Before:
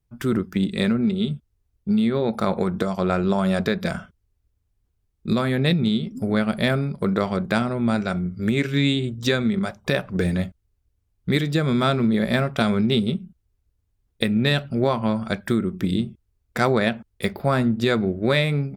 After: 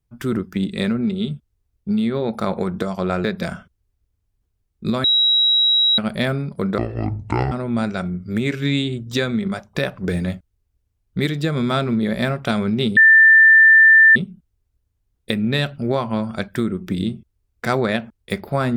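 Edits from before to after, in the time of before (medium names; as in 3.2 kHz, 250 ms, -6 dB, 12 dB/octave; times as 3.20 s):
3.24–3.67 s: delete
5.47–6.41 s: bleep 3.86 kHz -12.5 dBFS
7.21–7.63 s: speed 57%
13.08 s: add tone 1.78 kHz -6.5 dBFS 1.19 s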